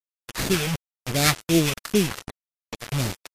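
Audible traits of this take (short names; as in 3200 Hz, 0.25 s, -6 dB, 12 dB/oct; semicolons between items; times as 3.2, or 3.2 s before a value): aliases and images of a low sample rate 3000 Hz, jitter 20%; phasing stages 2, 2.7 Hz, lowest notch 280–1100 Hz; a quantiser's noise floor 6-bit, dither none; MP3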